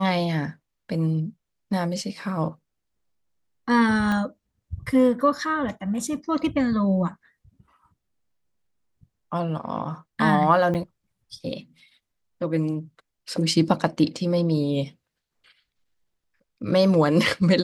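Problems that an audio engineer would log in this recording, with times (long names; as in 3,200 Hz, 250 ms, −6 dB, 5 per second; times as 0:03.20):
0:04.12: click −15 dBFS
0:10.74–0:10.75: drop-out 7.2 ms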